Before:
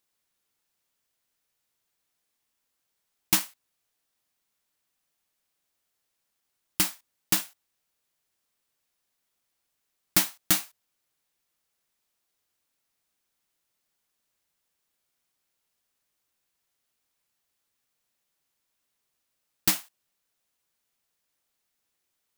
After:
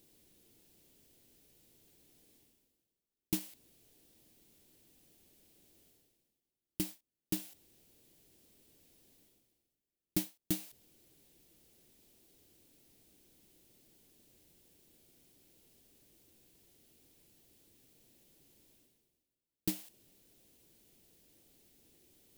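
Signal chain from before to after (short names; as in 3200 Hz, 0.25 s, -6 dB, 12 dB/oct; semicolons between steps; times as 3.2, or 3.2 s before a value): EQ curve 200 Hz 0 dB, 340 Hz +3 dB, 1200 Hz -22 dB, 3000 Hz -12 dB, 6400 Hz -13 dB, 13000 Hz -10 dB; reverse; upward compressor, threshold -40 dBFS; reverse; gain -4 dB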